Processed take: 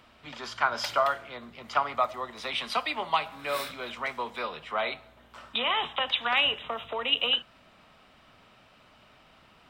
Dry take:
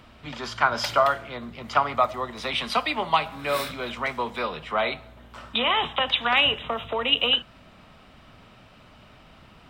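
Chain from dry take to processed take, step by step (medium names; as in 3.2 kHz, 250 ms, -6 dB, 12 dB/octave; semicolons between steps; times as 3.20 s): bass shelf 260 Hz -9.5 dB; trim -4 dB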